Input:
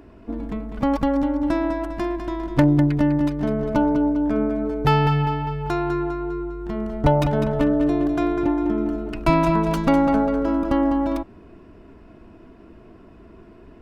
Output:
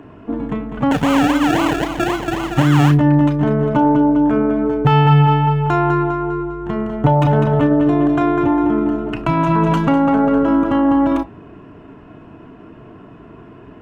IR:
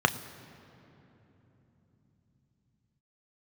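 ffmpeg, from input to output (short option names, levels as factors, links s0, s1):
-filter_complex "[0:a]alimiter=limit=0.178:level=0:latency=1:release=10,asettb=1/sr,asplit=3[s0][s1][s2];[s0]atrim=end=0.914[s3];[s1]atrim=start=0.91:end=2.91,asetpts=PTS-STARTPTS,afade=t=in:d=0.004:c=qsin,afade=t=out:st=1.996:d=0.004:c=qsin,acrusher=samples=34:mix=1:aa=0.000001:lfo=1:lforange=20.4:lforate=3.8[s4];[s2]atrim=start=2.906[s5];[s3][s4]acrossfade=d=0.004:c1=hsin:c2=qsin[s6];[s6][s5]acrossfade=d=0.004:c1=qsin:c2=hsin[s7];[1:a]atrim=start_sample=2205,atrim=end_sample=3087[s8];[s7][s8]afir=irnorm=-1:irlink=0,volume=0.531"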